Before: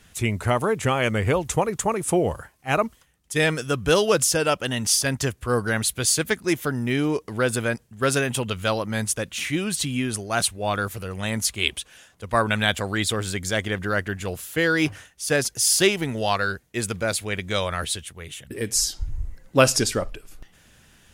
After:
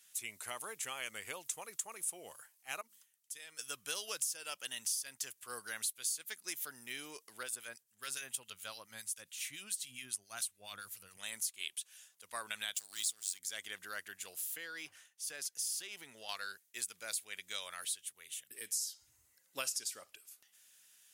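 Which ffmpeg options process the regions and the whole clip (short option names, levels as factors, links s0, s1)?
-filter_complex "[0:a]asettb=1/sr,asplit=3[s0][s1][s2];[s0]atrim=end=2.814[s3];[s1]atrim=start=2.81:end=3.59,asetpts=PTS-STARTPTS,afade=t=in:d=0.004:c=qsin,afade=t=out:st=0.776:d=0.004:c=qsin,bandreject=f=50:t=h:w=6,bandreject=f=100:t=h:w=6,bandreject=f=150:t=h:w=6,bandreject=f=200:t=h:w=6,bandreject=f=250:t=h:w=6,bandreject=f=300:t=h:w=6,bandreject=f=350:t=h:w=6,acompressor=threshold=0.01:ratio=2.5:attack=3.2:release=140:knee=1:detection=peak[s4];[s2]atrim=start=3.586[s5];[s3][s4]acrossfade=d=0.004:c1=hsin:c2=qsin[s6];[s6][s5]acrossfade=d=0.004:c1=qsin:c2=hsin,asettb=1/sr,asplit=3[s7][s8][s9];[s7]atrim=end=7.434[s10];[s8]atrim=start=7.43:end=11.17,asetpts=PTS-STARTPTS,afade=t=in:d=0.004:c=qsin,afade=t=out:st=3.736:d=0.004:c=qsin,asubboost=boost=4.5:cutoff=200,acrossover=split=1500[s11][s12];[s11]aeval=exprs='val(0)*(1-0.7/2+0.7/2*cos(2*PI*7.2*n/s))':c=same[s13];[s12]aeval=exprs='val(0)*(1-0.7/2-0.7/2*cos(2*PI*7.2*n/s))':c=same[s14];[s13][s14]amix=inputs=2:normalize=0[s15];[s9]atrim=start=11.166[s16];[s10][s15]acrossfade=d=0.004:c1=hsin:c2=qsin[s17];[s17][s16]acrossfade=d=0.004:c1=qsin:c2=hsin,asettb=1/sr,asplit=3[s18][s19][s20];[s18]atrim=end=12.764[s21];[s19]atrim=start=12.76:end=13.39,asetpts=PTS-STARTPTS,afade=t=in:d=0.004:c=qsin,afade=t=out:st=0.626:d=0.004:c=qsin,equalizer=f=6700:t=o:w=2.2:g=12.5,acrossover=split=270|3000[s22][s23][s24];[s23]acompressor=threshold=0.0178:ratio=4:attack=3.2:release=140:knee=2.83:detection=peak[s25];[s22][s25][s24]amix=inputs=3:normalize=0,aeval=exprs='sgn(val(0))*max(abs(val(0))-0.0224,0)':c=same[s26];[s20]atrim=start=13.386[s27];[s21][s26]acrossfade=d=0.004:c1=hsin:c2=qsin[s28];[s28][s27]acrossfade=d=0.004:c1=qsin:c2=hsin,asettb=1/sr,asplit=3[s29][s30][s31];[s29]atrim=end=14.574[s32];[s30]atrim=start=14.57:end=16.29,asetpts=PTS-STARTPTS,afade=t=in:d=0.004:c=qsin,afade=t=out:st=1.716:d=0.004:c=qsin,highshelf=f=4600:g=-9.5,acompressor=threshold=0.0794:ratio=5:attack=3.2:release=140:knee=1:detection=peak[s33];[s31]atrim=start=16.286[s34];[s32][s33]acrossfade=d=0.004:c1=hsin:c2=qsin[s35];[s35][s34]acrossfade=d=0.004:c1=qsin:c2=hsin,highpass=79,aderivative,acompressor=threshold=0.0251:ratio=4,volume=0.631"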